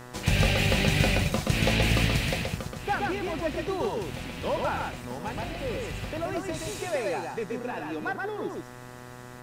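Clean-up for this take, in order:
hum removal 123.6 Hz, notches 16
downward expander −35 dBFS, range −21 dB
echo removal 126 ms −3 dB

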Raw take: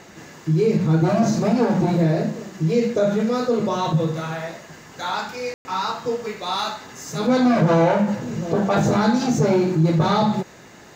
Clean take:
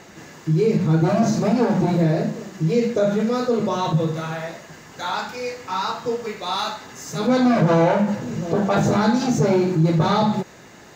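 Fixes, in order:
ambience match 0:05.54–0:05.65

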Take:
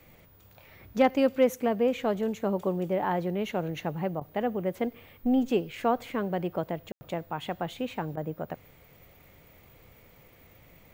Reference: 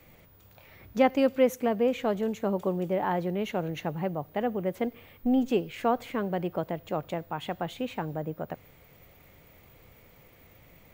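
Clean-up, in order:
clipped peaks rebuilt −12.5 dBFS
ambience match 0:06.92–0:07.01
repair the gap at 0:04.20/0:06.97/0:08.16, 10 ms

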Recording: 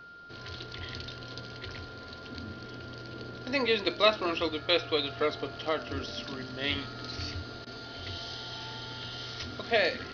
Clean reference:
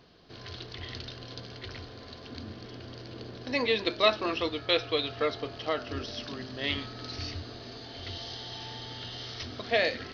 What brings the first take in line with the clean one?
notch filter 1,400 Hz, Q 30
repair the gap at 0:07.65, 15 ms

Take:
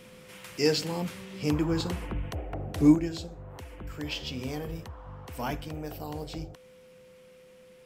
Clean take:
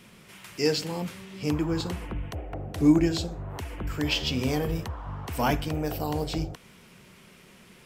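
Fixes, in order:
notch filter 510 Hz, Q 30
level correction +8 dB, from 0:02.95

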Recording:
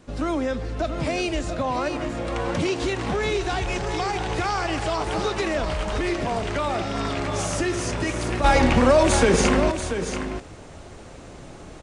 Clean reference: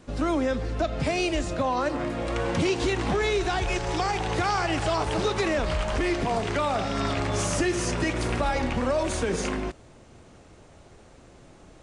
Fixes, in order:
echo removal 685 ms −9 dB
level correction −9 dB, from 0:08.44

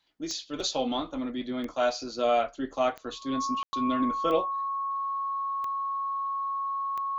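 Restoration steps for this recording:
click removal
notch filter 1,100 Hz, Q 30
ambience match 0:03.63–0:03.73

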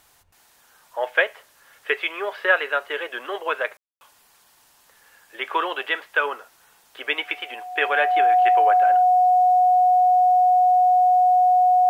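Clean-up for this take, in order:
notch filter 730 Hz, Q 30
ambience match 0:03.77–0:04.01

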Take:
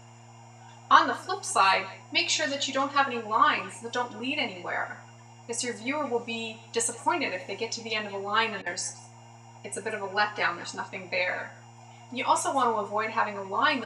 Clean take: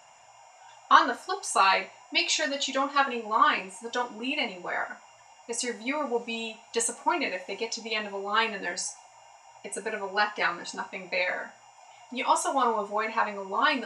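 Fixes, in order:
hum removal 116 Hz, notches 4
repair the gap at 0:08.62, 41 ms
echo removal 177 ms −20 dB

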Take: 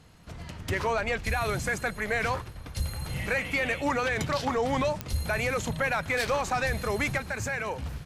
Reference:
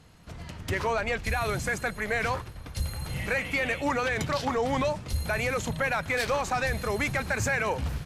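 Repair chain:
click removal
level correction +4.5 dB, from 0:07.18

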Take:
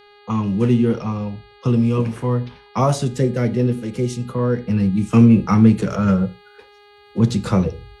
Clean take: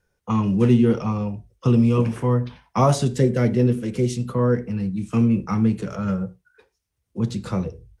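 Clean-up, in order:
hum removal 410.9 Hz, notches 11
level 0 dB, from 0:04.68 −7.5 dB

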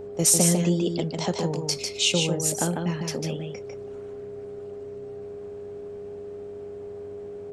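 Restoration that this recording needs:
hum removal 95.3 Hz, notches 7
notch filter 410 Hz, Q 30
echo removal 149 ms −4.5 dB

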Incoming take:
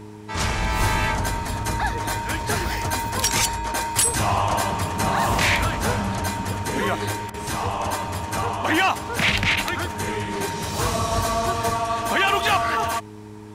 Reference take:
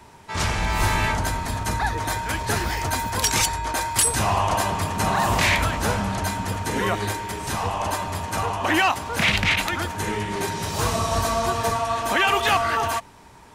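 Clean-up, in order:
hum removal 105.5 Hz, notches 4
repair the gap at 0:07.30, 38 ms

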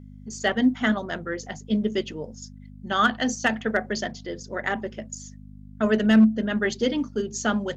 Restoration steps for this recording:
clipped peaks rebuilt −10 dBFS
hum removal 50.4 Hz, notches 5

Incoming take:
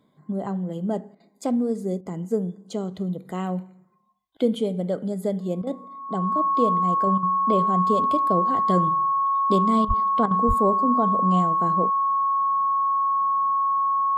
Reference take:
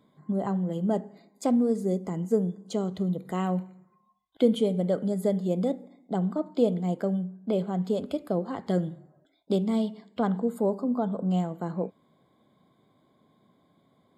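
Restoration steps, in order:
notch filter 1,100 Hz, Q 30
0:09.87–0:09.99: high-pass filter 140 Hz 24 dB per octave
0:10.47–0:10.59: high-pass filter 140 Hz 24 dB per octave
repair the gap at 0:01.15/0:02.01/0:05.62/0:07.18/0:09.85/0:10.26, 48 ms
level 0 dB, from 0:07.07 −3.5 dB

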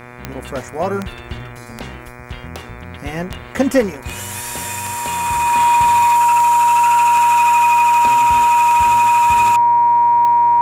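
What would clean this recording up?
click removal
hum removal 122 Hz, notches 20
notch filter 950 Hz, Q 30

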